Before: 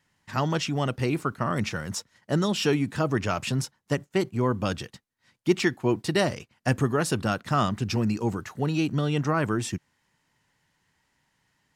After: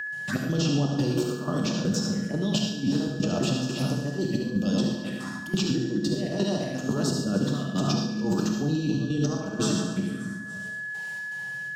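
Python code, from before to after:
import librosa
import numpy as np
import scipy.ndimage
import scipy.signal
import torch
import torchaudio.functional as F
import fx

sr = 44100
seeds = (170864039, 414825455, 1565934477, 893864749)

y = fx.reverse_delay_fb(x, sr, ms=143, feedback_pct=55, wet_db=-10.5)
y = scipy.signal.sosfilt(scipy.signal.butter(4, 170.0, 'highpass', fs=sr, output='sos'), y)
y = fx.low_shelf(y, sr, hz=270.0, db=9.5)
y = fx.over_compress(y, sr, threshold_db=-29.0, ratio=-1.0)
y = fx.rotary(y, sr, hz=0.7)
y = fx.env_phaser(y, sr, low_hz=260.0, high_hz=2100.0, full_db=-28.5)
y = fx.step_gate(y, sr, bpm=122, pattern='.xx.xxx.xx.', floor_db=-12.0, edge_ms=4.5)
y = fx.rev_gated(y, sr, seeds[0], gate_ms=140, shape='flat', drr_db=2.0)
y = y + 10.0 ** (-49.0 / 20.0) * np.sin(2.0 * np.pi * 1700.0 * np.arange(len(y)) / sr)
y = fx.echo_feedback(y, sr, ms=71, feedback_pct=49, wet_db=-9)
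y = fx.band_squash(y, sr, depth_pct=70)
y = y * librosa.db_to_amplitude(3.5)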